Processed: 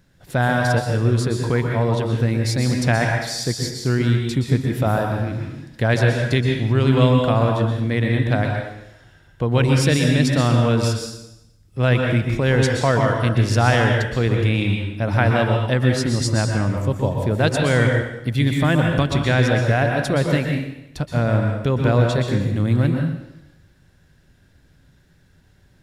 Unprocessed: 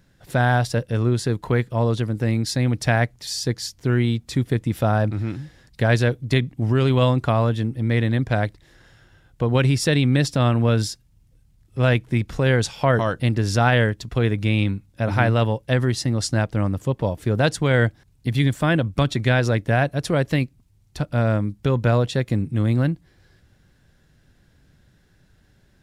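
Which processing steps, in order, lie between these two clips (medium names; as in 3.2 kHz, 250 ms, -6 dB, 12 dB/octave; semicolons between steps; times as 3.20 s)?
plate-style reverb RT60 0.86 s, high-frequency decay 1×, pre-delay 110 ms, DRR 1.5 dB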